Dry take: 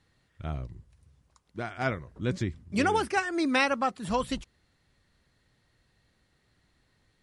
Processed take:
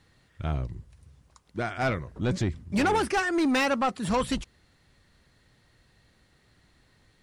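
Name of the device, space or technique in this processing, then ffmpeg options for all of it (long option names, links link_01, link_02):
saturation between pre-emphasis and de-emphasis: -af "highshelf=frequency=5800:gain=11.5,asoftclip=type=tanh:threshold=-26dB,highshelf=frequency=5800:gain=-11.5,volume=6.5dB"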